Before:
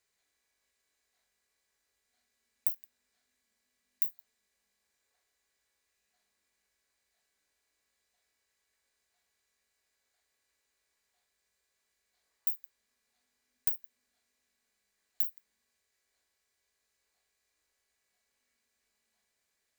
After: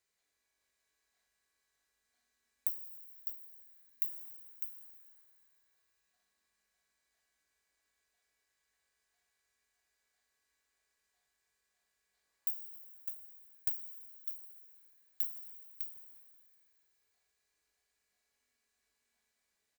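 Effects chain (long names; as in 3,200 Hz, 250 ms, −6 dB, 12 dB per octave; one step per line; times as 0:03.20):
on a send: single-tap delay 604 ms −6 dB
on the sum: dense smooth reverb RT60 3.2 s, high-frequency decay 0.7×, DRR 5.5 dB
level −4 dB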